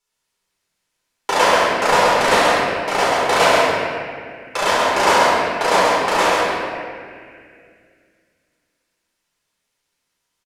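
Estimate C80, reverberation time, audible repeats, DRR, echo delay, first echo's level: -2.5 dB, 2.2 s, 1, -9.0 dB, 0.134 s, -3.5 dB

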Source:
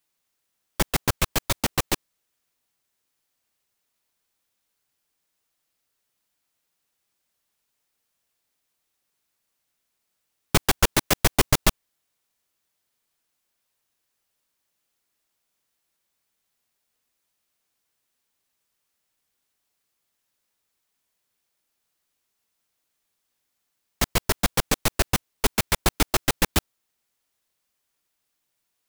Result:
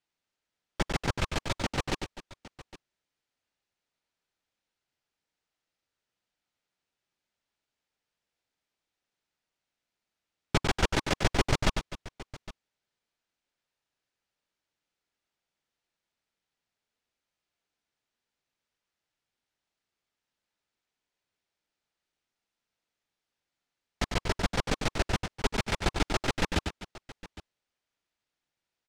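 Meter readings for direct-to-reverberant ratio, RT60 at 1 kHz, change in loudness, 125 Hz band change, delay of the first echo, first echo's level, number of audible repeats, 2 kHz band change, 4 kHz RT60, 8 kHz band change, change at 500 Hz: none, none, -7.0 dB, -4.0 dB, 99 ms, -6.5 dB, 3, -5.0 dB, none, -13.0 dB, -4.5 dB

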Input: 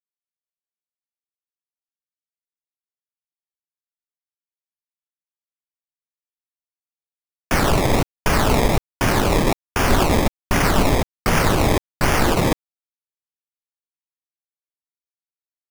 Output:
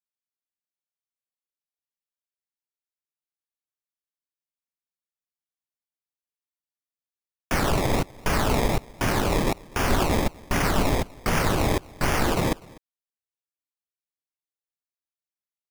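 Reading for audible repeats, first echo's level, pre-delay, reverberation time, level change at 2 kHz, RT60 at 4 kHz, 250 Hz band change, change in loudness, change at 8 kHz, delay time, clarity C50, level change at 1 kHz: 1, -23.5 dB, none, none, -5.5 dB, none, -5.5 dB, -5.5 dB, -5.5 dB, 0.248 s, none, -5.5 dB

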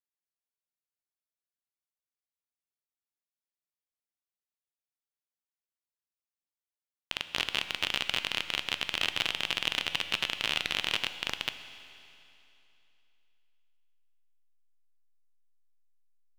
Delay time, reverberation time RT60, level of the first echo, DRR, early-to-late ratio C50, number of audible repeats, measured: none, 2.9 s, none, 9.5 dB, 10.5 dB, none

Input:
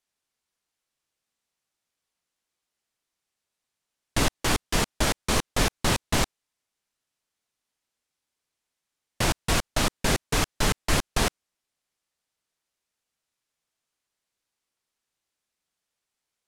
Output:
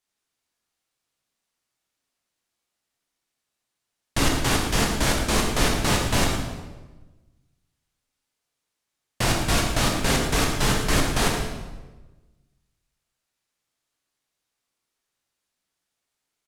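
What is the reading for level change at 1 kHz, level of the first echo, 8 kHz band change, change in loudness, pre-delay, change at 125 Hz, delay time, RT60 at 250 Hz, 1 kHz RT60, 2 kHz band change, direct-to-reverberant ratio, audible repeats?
+3.0 dB, -10.0 dB, +2.5 dB, +3.0 dB, 12 ms, +4.0 dB, 0.113 s, 1.4 s, 1.1 s, +3.0 dB, 0.0 dB, 1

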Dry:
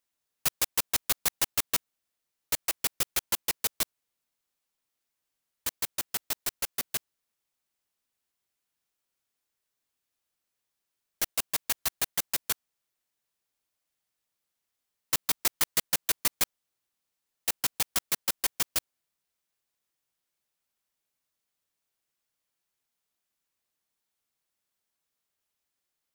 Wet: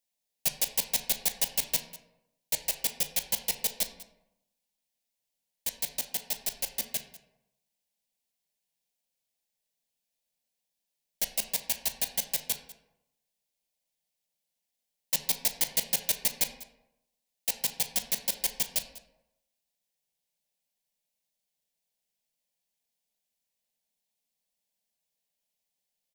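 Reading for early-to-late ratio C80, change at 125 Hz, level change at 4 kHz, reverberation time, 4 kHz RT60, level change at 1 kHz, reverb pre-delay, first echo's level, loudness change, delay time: 11.5 dB, -2.5 dB, -0.5 dB, 0.85 s, 0.55 s, -5.5 dB, 9 ms, -19.0 dB, -0.5 dB, 0.196 s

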